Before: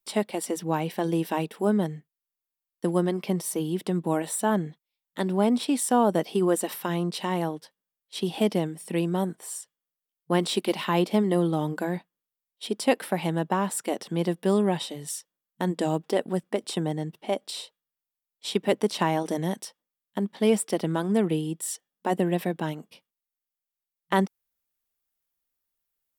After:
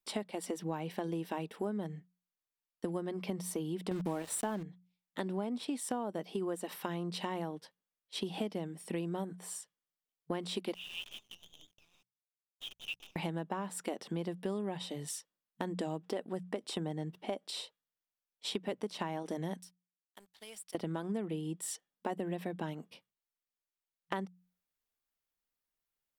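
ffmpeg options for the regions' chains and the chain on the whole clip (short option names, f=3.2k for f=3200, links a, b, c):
-filter_complex "[0:a]asettb=1/sr,asplit=3[a][b][c];[a]atrim=end=3.914[d];[b]atrim=start=3.91:end=4.63,asetpts=PTS-STARTPTS,afade=t=in:d=0.004:c=qsin,afade=t=out:st=0.716:d=0.004:c=qsin,highshelf=f=5.6k:g=4.5,acontrast=65,aeval=exprs='val(0)*gte(abs(val(0)),0.0355)':c=same[e];[c]atrim=start=4.626[f];[d][e]acrossfade=d=0.004:c1=hsin:c2=qsin[g];[g][f]acrossfade=d=0.004:c1=qsin:c2=hsin,asettb=1/sr,asplit=3[h][i][j];[h]atrim=end=10.744[k];[i]atrim=start=10.74:end=13.16,asetpts=PTS-STARTPTS,afade=t=in:d=0.004:c=qsin,afade=t=out:st=2.416:d=0.004:c=qsin,asuperpass=centerf=3000:order=12:qfactor=2.5,acrusher=bits=8:dc=4:mix=0:aa=0.000001[l];[j]atrim=start=13.156[m];[k][l]acrossfade=d=0.004:c1=hsin:c2=qsin[n];[n][m]acrossfade=d=0.004:c1=qsin:c2=hsin,asettb=1/sr,asplit=3[o][p][q];[o]atrim=end=19.614[r];[p]atrim=start=19.61:end=20.75,asetpts=PTS-STARTPTS,afade=t=in:d=0.004:c=qsin,afade=t=out:st=1.136:d=0.004:c=qsin,aderivative,acompressor=threshold=-41dB:ratio=2.5:attack=3.2:release=140:knee=1:detection=peak,aeval=exprs='sgn(val(0))*max(abs(val(0))-0.00119,0)':c=same[s];[q]atrim=start=20.746[t];[r][s]acrossfade=d=0.004:c1=hsin:c2=qsin[u];[u][t]acrossfade=d=0.004:c1=qsin:c2=hsin,highshelf=f=7.4k:g=-8,bandreject=f=60:t=h:w=6,bandreject=f=120:t=h:w=6,bandreject=f=180:t=h:w=6,acompressor=threshold=-31dB:ratio=6,volume=-2.5dB"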